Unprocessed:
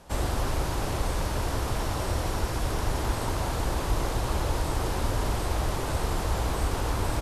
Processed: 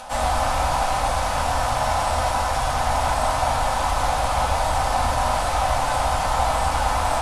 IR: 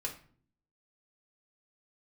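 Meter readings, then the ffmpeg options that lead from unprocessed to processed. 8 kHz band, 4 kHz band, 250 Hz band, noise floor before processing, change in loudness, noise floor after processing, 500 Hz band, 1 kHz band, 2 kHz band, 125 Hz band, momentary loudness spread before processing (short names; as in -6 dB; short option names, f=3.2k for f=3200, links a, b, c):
+7.0 dB, +7.5 dB, -2.0 dB, -31 dBFS, +7.5 dB, -24 dBFS, +7.0 dB, +13.5 dB, +9.0 dB, +0.5 dB, 1 LU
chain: -filter_complex "[0:a]asplit=2[a][b];[b]acrusher=bits=4:mix=0:aa=0.5,volume=-8.5dB[c];[a][c]amix=inputs=2:normalize=0,acompressor=mode=upward:threshold=-34dB:ratio=2.5,lowshelf=f=530:t=q:w=3:g=-9[d];[1:a]atrim=start_sample=2205,asetrate=22491,aresample=44100[e];[d][e]afir=irnorm=-1:irlink=0"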